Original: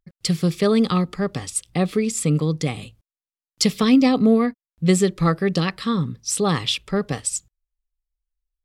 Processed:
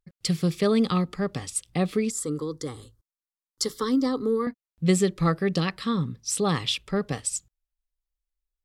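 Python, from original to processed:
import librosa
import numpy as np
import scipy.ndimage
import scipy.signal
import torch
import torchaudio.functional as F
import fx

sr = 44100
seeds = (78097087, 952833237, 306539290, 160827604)

y = fx.fixed_phaser(x, sr, hz=680.0, stages=6, at=(2.1, 4.47))
y = y * 10.0 ** (-4.0 / 20.0)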